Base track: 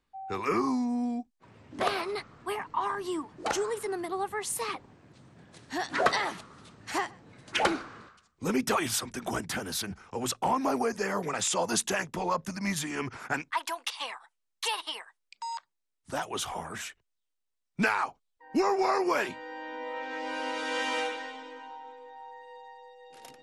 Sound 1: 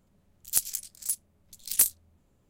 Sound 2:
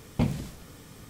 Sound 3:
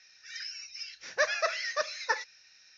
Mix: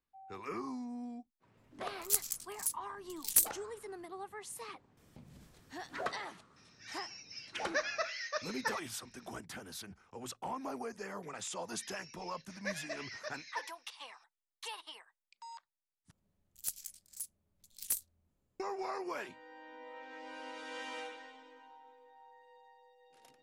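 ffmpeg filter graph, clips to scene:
ffmpeg -i bed.wav -i cue0.wav -i cue1.wav -i cue2.wav -filter_complex "[1:a]asplit=2[link_01][link_02];[3:a]asplit=2[link_03][link_04];[0:a]volume=-13dB[link_05];[2:a]acompressor=threshold=-34dB:ratio=6:attack=3.2:release=140:knee=1:detection=peak[link_06];[link_04]asuperstop=centerf=1300:order=4:qfactor=3.9[link_07];[link_05]asplit=2[link_08][link_09];[link_08]atrim=end=16.114[link_10];[link_02]atrim=end=2.49,asetpts=PTS-STARTPTS,volume=-13dB[link_11];[link_09]atrim=start=18.596[link_12];[link_01]atrim=end=2.49,asetpts=PTS-STARTPTS,volume=-5dB,afade=type=in:duration=0.004:curve=hsin,afade=type=out:start_time=2.486:duration=0.004:curve=hsin,adelay=1570[link_13];[link_06]atrim=end=1.09,asetpts=PTS-STARTPTS,volume=-17.5dB,afade=type=in:duration=0.004:curve=hsin,afade=type=out:start_time=1.086:duration=0.004:curve=hsin,adelay=219177S[link_14];[link_03]atrim=end=2.77,asetpts=PTS-STARTPTS,volume=-7dB,afade=type=in:duration=0.004:curve=hsin,afade=type=out:start_time=2.766:duration=0.004:curve=hsin,adelay=6560[link_15];[link_07]atrim=end=2.77,asetpts=PTS-STARTPTS,volume=-12.5dB,afade=type=in:duration=0.004:curve=hsin,afade=type=out:start_time=2.766:duration=0.004:curve=hsin,adelay=11470[link_16];[link_10][link_11]acrossfade=duration=0.004:curve1=hsin:curve2=hsin[link_17];[link_17][link_12]acrossfade=duration=0.004:curve1=hsin:curve2=hsin[link_18];[link_18][link_13][link_14][link_15][link_16]amix=inputs=5:normalize=0" out.wav

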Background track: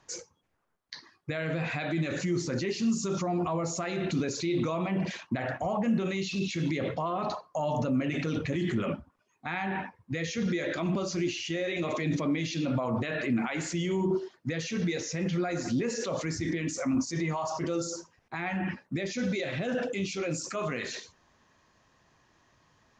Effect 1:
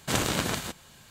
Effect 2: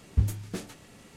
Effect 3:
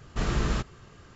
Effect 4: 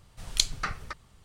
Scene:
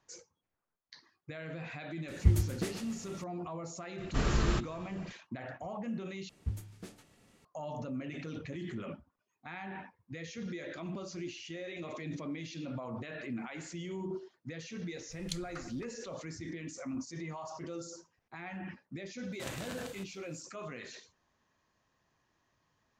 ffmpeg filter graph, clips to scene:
ffmpeg -i bed.wav -i cue0.wav -i cue1.wav -i cue2.wav -i cue3.wav -filter_complex "[2:a]asplit=2[link_01][link_02];[0:a]volume=-11dB[link_03];[link_01]asplit=2[link_04][link_05];[link_05]adelay=128.3,volume=-9dB,highshelf=frequency=4000:gain=-2.89[link_06];[link_04][link_06]amix=inputs=2:normalize=0[link_07];[link_03]asplit=2[link_08][link_09];[link_08]atrim=end=6.294[link_10];[link_02]atrim=end=1.16,asetpts=PTS-STARTPTS,volume=-12dB[link_11];[link_09]atrim=start=7.446[link_12];[link_07]atrim=end=1.16,asetpts=PTS-STARTPTS,volume=-0.5dB,afade=type=in:duration=0.004:curve=hsin,afade=type=out:start_time=1.156:duration=0.004:curve=hsin,adelay=2080[link_13];[3:a]atrim=end=1.15,asetpts=PTS-STARTPTS,volume=-2.5dB,afade=type=in:duration=0.004:curve=hsin,afade=type=out:start_time=1.146:duration=0.004:curve=hsin,adelay=3980[link_14];[4:a]atrim=end=1.24,asetpts=PTS-STARTPTS,volume=-16.5dB,afade=type=in:duration=0.004:curve=hsin,afade=type=out:start_time=1.236:duration=0.004:curve=hsin,adelay=657972S[link_15];[1:a]atrim=end=1.1,asetpts=PTS-STARTPTS,volume=-16.5dB,afade=type=in:duration=0.004:curve=hsin,afade=type=out:start_time=1.096:duration=0.004:curve=hsin,adelay=19320[link_16];[link_10][link_11]acrossfade=duration=0.004:curve1=hsin:curve2=hsin[link_17];[link_17][link_12]acrossfade=duration=0.004:curve1=hsin:curve2=hsin[link_18];[link_18][link_13][link_14][link_15][link_16]amix=inputs=5:normalize=0" out.wav

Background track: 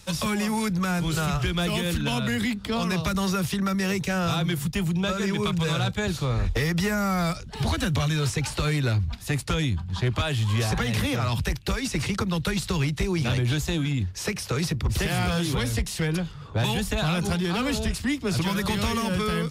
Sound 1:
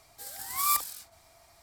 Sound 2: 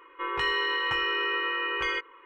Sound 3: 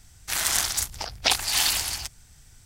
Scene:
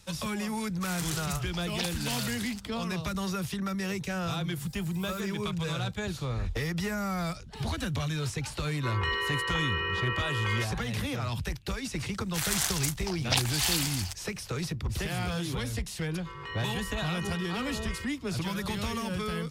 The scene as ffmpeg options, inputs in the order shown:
ffmpeg -i bed.wav -i cue0.wav -i cue1.wav -i cue2.wav -filter_complex "[3:a]asplit=2[link_01][link_02];[2:a]asplit=2[link_03][link_04];[0:a]volume=-7dB[link_05];[1:a]alimiter=limit=-22dB:level=0:latency=1:release=499[link_06];[link_01]atrim=end=2.65,asetpts=PTS-STARTPTS,volume=-13dB,afade=type=in:duration=0.004:curve=hsin,afade=type=out:start_time=2.646:duration=0.004:curve=hsin,adelay=530[link_07];[link_06]atrim=end=1.62,asetpts=PTS-STARTPTS,volume=-16dB,afade=type=in:duration=0.004:curve=hsin,afade=type=out:start_time=1.616:duration=0.004:curve=hsin,adelay=4440[link_08];[link_03]atrim=end=2.25,asetpts=PTS-STARTPTS,volume=-3.5dB,afade=type=in:duration=0.004:curve=hsin,afade=type=out:start_time=2.246:duration=0.004:curve=hsin,adelay=8640[link_09];[link_02]atrim=end=2.65,asetpts=PTS-STARTPTS,volume=-5.5dB,afade=type=in:duration=0.004:curve=hsin,afade=type=out:start_time=2.646:duration=0.004:curve=hsin,adelay=12060[link_10];[link_04]atrim=end=2.25,asetpts=PTS-STARTPTS,volume=-13dB,afade=type=in:duration=0.004:curve=hsin,afade=type=out:start_time=2.246:duration=0.004:curve=hsin,adelay=16060[link_11];[link_05][link_07][link_08][link_09][link_10][link_11]amix=inputs=6:normalize=0" out.wav

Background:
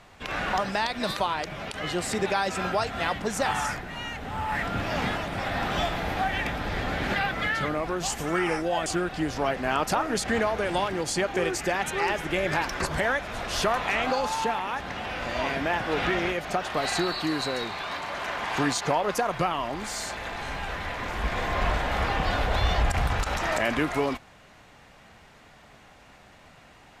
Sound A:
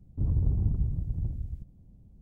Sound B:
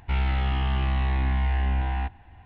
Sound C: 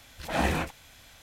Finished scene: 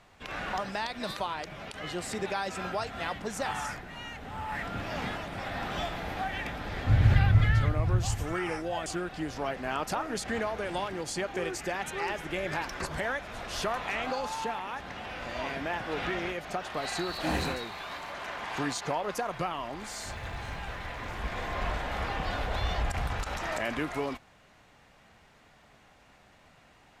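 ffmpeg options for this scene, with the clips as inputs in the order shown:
ffmpeg -i bed.wav -i cue0.wav -i cue1.wav -i cue2.wav -filter_complex "[1:a]asplit=2[link_01][link_02];[0:a]volume=-6.5dB[link_03];[link_01]equalizer=frequency=110:width=3.6:gain=11.5[link_04];[link_02]acrusher=bits=5:mode=log:mix=0:aa=0.000001[link_05];[link_04]atrim=end=2.21,asetpts=PTS-STARTPTS,afade=type=in:duration=0.004:curve=hsin,afade=type=out:start_time=2.206:duration=0.004:curve=hsin,adelay=6690[link_06];[3:a]atrim=end=1.22,asetpts=PTS-STARTPTS,volume=-5dB,afade=type=in:duration=0.004:curve=hsin,afade=type=out:start_time=1.216:duration=0.004:curve=hsin,adelay=16900[link_07];[link_05]atrim=end=2.21,asetpts=PTS-STARTPTS,volume=-16.5dB,afade=type=in:duration=0.004:curve=hsin,afade=type=out:start_time=2.206:duration=0.004:curve=hsin,adelay=19870[link_08];[link_03][link_06][link_07][link_08]amix=inputs=4:normalize=0" out.wav

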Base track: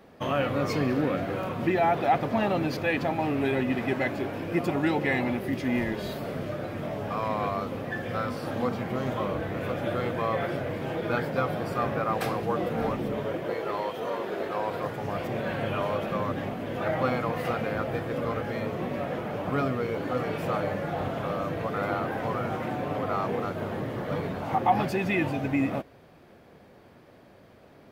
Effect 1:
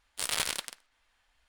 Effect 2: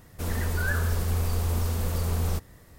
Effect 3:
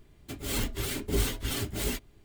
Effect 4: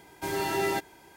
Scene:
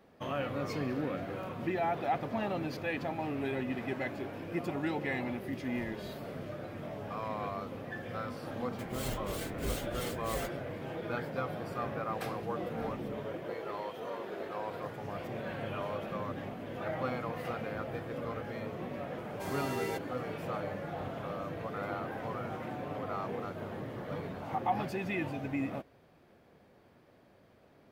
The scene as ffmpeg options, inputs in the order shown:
ffmpeg -i bed.wav -i cue0.wav -i cue1.wav -i cue2.wav -i cue3.wav -filter_complex "[0:a]volume=-8.5dB[link_01];[3:a]atrim=end=2.24,asetpts=PTS-STARTPTS,volume=-9dB,afade=type=in:duration=0.004:curve=hsin,afade=type=out:start_time=2.236:duration=0.004:curve=hsin,adelay=374850S[link_02];[4:a]atrim=end=1.16,asetpts=PTS-STARTPTS,volume=-9.5dB,afade=type=in:duration=0.004:curve=hsin,afade=type=out:start_time=1.156:duration=0.004:curve=hsin,adelay=19180[link_03];[link_01][link_02][link_03]amix=inputs=3:normalize=0" out.wav

